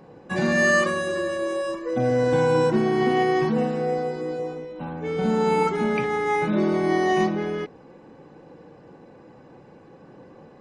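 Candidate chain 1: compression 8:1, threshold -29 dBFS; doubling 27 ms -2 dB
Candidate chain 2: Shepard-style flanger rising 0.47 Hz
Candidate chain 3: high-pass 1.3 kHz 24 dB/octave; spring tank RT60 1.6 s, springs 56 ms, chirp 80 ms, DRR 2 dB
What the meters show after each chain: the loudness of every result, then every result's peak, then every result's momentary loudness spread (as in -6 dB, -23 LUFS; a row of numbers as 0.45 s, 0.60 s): -30.0 LUFS, -28.5 LUFS, -28.5 LUFS; -18.0 dBFS, -14.5 dBFS, -12.0 dBFS; 18 LU, 12 LU, 20 LU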